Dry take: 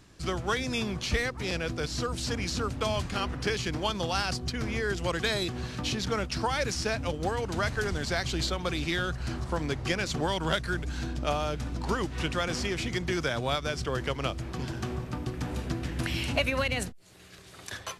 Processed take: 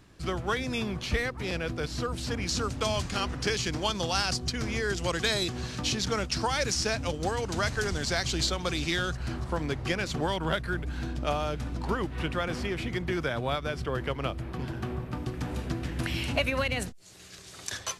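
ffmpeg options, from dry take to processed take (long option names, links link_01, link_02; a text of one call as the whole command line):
ffmpeg -i in.wav -af "asetnsamples=nb_out_samples=441:pad=0,asendcmd='2.49 equalizer g 5.5;9.17 equalizer g -3.5;10.36 equalizer g -10;11.03 equalizer g -3.5;11.87 equalizer g -10.5;15.13 equalizer g -2;16.88 equalizer g 8.5',equalizer=frequency=6400:width_type=o:width=1.4:gain=-5" out.wav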